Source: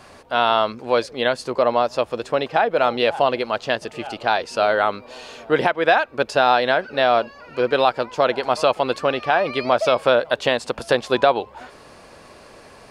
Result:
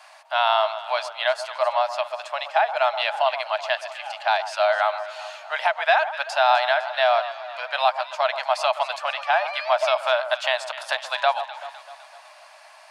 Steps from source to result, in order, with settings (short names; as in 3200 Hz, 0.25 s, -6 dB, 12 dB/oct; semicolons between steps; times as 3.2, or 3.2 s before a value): rippled Chebyshev high-pass 610 Hz, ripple 3 dB; echo with dull and thin repeats by turns 0.127 s, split 1400 Hz, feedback 71%, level -11 dB